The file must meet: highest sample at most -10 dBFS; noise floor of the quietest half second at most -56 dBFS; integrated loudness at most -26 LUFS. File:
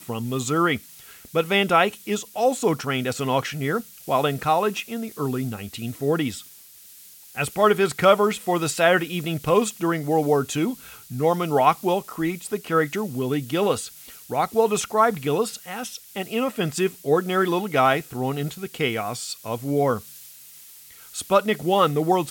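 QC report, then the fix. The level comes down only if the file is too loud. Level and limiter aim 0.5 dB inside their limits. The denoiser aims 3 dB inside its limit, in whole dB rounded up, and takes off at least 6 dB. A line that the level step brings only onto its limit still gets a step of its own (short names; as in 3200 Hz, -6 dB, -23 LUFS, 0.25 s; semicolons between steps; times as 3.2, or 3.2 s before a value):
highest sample -3.5 dBFS: fail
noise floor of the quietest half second -47 dBFS: fail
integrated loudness -23.0 LUFS: fail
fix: denoiser 9 dB, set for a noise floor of -47 dBFS; gain -3.5 dB; limiter -10.5 dBFS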